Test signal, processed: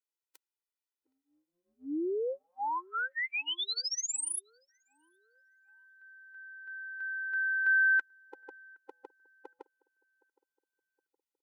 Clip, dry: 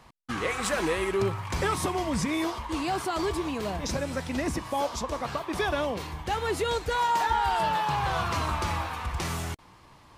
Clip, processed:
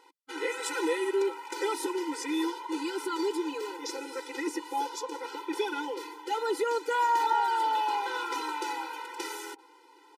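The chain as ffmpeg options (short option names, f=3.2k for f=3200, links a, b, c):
-filter_complex "[0:a]highpass=82,asplit=2[a][b];[b]adelay=767,lowpass=f=830:p=1,volume=-23dB,asplit=2[c][d];[d]adelay=767,lowpass=f=830:p=1,volume=0.55,asplit=2[e][f];[f]adelay=767,lowpass=f=830:p=1,volume=0.55,asplit=2[g][h];[h]adelay=767,lowpass=f=830:p=1,volume=0.55[i];[c][e][g][i]amix=inputs=4:normalize=0[j];[a][j]amix=inputs=2:normalize=0,afftfilt=real='re*eq(mod(floor(b*sr/1024/260),2),1)':imag='im*eq(mod(floor(b*sr/1024/260),2),1)':win_size=1024:overlap=0.75"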